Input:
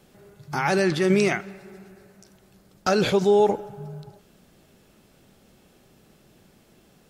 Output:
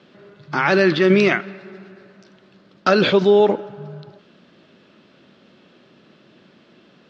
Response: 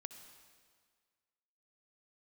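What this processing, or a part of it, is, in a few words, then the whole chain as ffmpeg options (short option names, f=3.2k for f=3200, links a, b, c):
kitchen radio: -af "highpass=220,equalizer=f=440:t=q:w=4:g=-5,equalizer=f=790:t=q:w=4:g=-9,equalizer=f=2.2k:t=q:w=4:g=-3,lowpass=f=4.1k:w=0.5412,lowpass=f=4.1k:w=1.3066,volume=9dB"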